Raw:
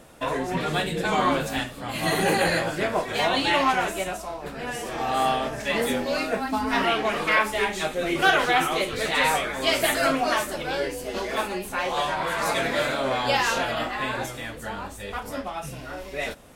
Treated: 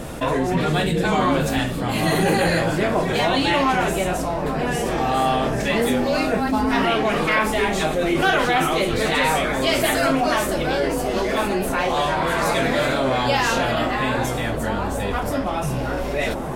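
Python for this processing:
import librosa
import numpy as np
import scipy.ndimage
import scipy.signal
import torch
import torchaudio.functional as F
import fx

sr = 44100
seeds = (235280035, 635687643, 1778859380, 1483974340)

y = fx.low_shelf(x, sr, hz=370.0, db=8.0)
y = fx.echo_wet_lowpass(y, sr, ms=830, feedback_pct=83, hz=980.0, wet_db=-15)
y = fx.env_flatten(y, sr, amount_pct=50)
y = y * 10.0 ** (-1.5 / 20.0)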